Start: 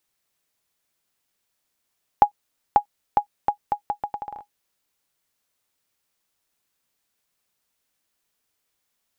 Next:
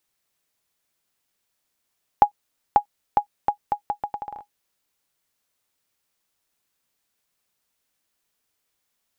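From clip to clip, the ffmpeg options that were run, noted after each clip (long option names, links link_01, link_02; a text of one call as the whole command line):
ffmpeg -i in.wav -af anull out.wav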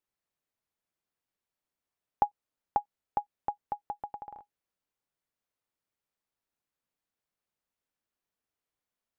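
ffmpeg -i in.wav -af "highshelf=frequency=2400:gain=-10.5,volume=-8.5dB" out.wav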